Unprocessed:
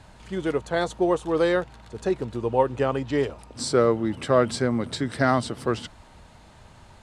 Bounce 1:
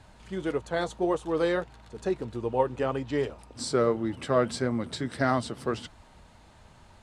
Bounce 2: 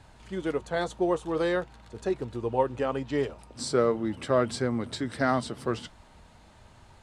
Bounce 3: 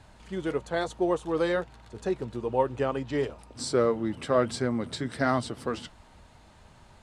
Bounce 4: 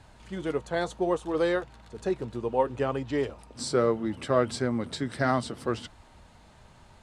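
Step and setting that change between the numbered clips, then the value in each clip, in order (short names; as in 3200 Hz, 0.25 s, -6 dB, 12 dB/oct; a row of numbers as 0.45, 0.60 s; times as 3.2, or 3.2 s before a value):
flange, rate: 1.7, 0.43, 1.1, 0.67 Hz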